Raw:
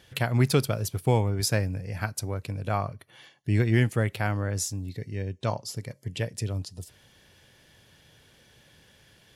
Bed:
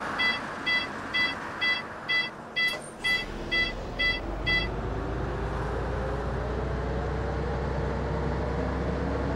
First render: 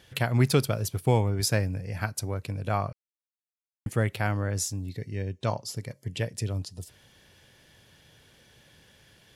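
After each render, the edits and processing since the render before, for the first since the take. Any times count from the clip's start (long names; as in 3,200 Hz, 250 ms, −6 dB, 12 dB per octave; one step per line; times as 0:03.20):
0:02.93–0:03.86: silence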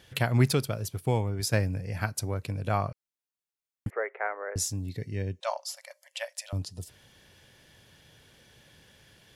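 0:00.53–0:01.53: clip gain −4 dB
0:03.90–0:04.56: Chebyshev band-pass filter 410–2,100 Hz, order 4
0:05.40–0:06.53: linear-phase brick-wall high-pass 530 Hz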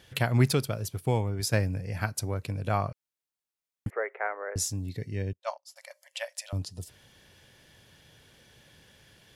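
0:05.33–0:05.76: expander for the loud parts 2.5 to 1, over −45 dBFS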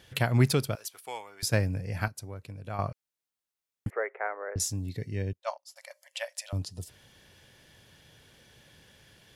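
0:00.75–0:01.43: high-pass filter 1,000 Hz
0:02.08–0:02.79: clip gain −9.5 dB
0:04.08–0:04.60: high-frequency loss of the air 260 metres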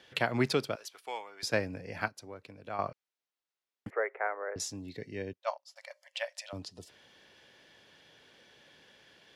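three-way crossover with the lows and the highs turned down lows −17 dB, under 220 Hz, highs −15 dB, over 5,800 Hz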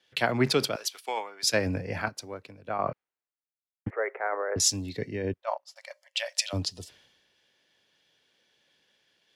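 in parallel at +2 dB: compressor whose output falls as the input rises −39 dBFS, ratio −0.5
on the sum: multiband upward and downward expander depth 100%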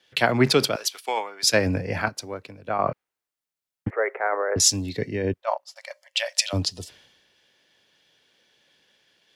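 level +5.5 dB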